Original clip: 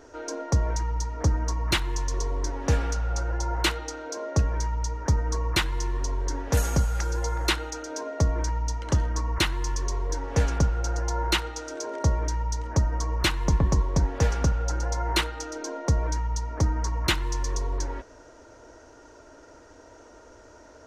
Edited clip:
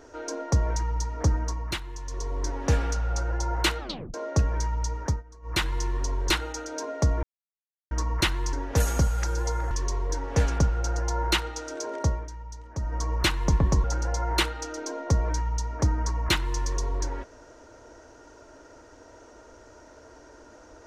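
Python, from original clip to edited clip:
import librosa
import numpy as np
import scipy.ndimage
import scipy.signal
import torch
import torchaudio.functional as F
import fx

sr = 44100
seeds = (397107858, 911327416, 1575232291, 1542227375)

y = fx.edit(x, sr, fx.fade_down_up(start_s=1.32, length_s=1.18, db=-9.5, fade_s=0.49),
    fx.tape_stop(start_s=3.8, length_s=0.34),
    fx.fade_down_up(start_s=4.94, length_s=0.77, db=-22.0, fade_s=0.29, curve='qsin'),
    fx.move(start_s=6.3, length_s=1.18, to_s=9.71),
    fx.silence(start_s=8.41, length_s=0.68),
    fx.fade_down_up(start_s=11.89, length_s=1.25, db=-12.0, fade_s=0.38, curve='qsin'),
    fx.cut(start_s=13.84, length_s=0.78), tone=tone)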